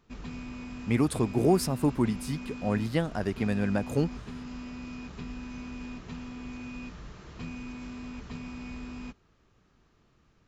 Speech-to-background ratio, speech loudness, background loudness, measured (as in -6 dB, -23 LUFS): 13.0 dB, -28.5 LUFS, -41.5 LUFS